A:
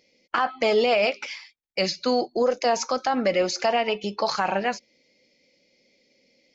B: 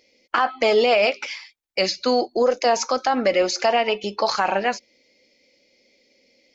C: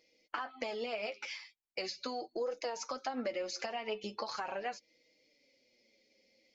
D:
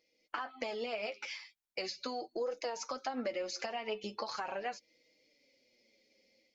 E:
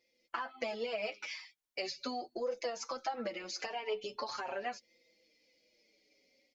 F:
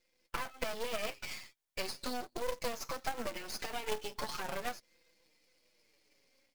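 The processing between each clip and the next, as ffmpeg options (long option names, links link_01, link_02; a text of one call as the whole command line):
ffmpeg -i in.wav -af "equalizer=frequency=160:width=2.5:gain=-10.5,volume=3.5dB" out.wav
ffmpeg -i in.wav -af "acompressor=threshold=-25dB:ratio=6,flanger=delay=6.2:depth=3.3:regen=27:speed=0.4:shape=sinusoidal,volume=-6.5dB" out.wav
ffmpeg -i in.wav -af "dynaudnorm=framelen=160:gausssize=3:maxgain=6dB,volume=-6dB" out.wav
ffmpeg -i in.wav -filter_complex "[0:a]asplit=2[link_01][link_02];[link_02]adelay=5.3,afreqshift=-0.43[link_03];[link_01][link_03]amix=inputs=2:normalize=1,volume=3dB" out.wav
ffmpeg -i in.wav -af "aeval=exprs='max(val(0),0)':channel_layout=same,acrusher=bits=2:mode=log:mix=0:aa=0.000001,volume=3.5dB" out.wav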